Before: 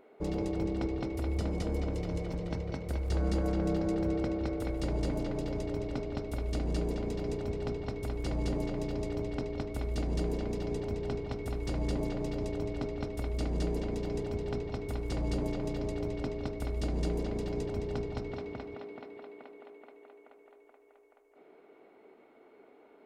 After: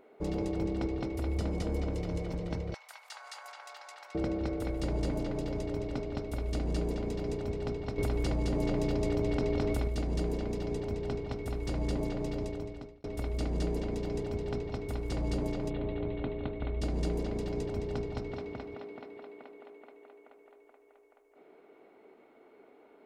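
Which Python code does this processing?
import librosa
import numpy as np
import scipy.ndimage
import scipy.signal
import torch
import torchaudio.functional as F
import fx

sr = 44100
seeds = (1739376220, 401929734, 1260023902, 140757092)

y = fx.steep_highpass(x, sr, hz=850.0, slope=36, at=(2.74, 4.15))
y = fx.env_flatten(y, sr, amount_pct=100, at=(7.98, 9.88))
y = fx.steep_lowpass(y, sr, hz=3900.0, slope=72, at=(15.69, 16.8), fade=0.02)
y = fx.edit(y, sr, fx.fade_out_span(start_s=12.37, length_s=0.67), tone=tone)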